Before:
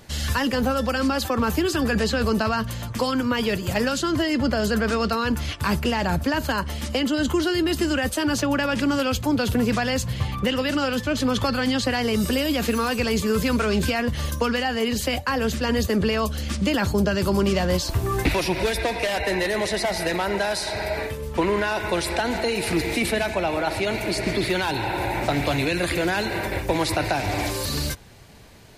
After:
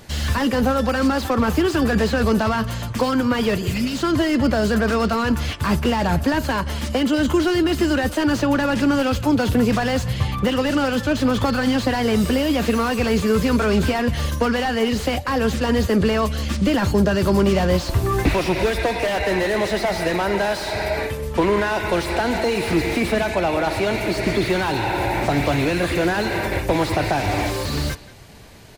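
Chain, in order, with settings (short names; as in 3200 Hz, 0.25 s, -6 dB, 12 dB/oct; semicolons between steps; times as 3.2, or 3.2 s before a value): spectral repair 3.63–3.95, 380–2000 Hz; speakerphone echo 0.18 s, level -18 dB; slew limiter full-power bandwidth 91 Hz; gain +4 dB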